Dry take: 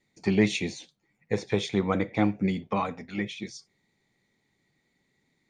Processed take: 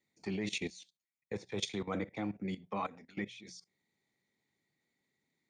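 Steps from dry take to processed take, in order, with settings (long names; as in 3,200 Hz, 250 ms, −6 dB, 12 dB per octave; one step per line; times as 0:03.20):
high-pass filter 110 Hz 6 dB per octave
high-shelf EQ 7,600 Hz +3.5 dB
mains-hum notches 60/120/180 Hz
output level in coarse steps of 16 dB
0:00.70–0:03.18: multiband upward and downward expander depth 70%
level −3.5 dB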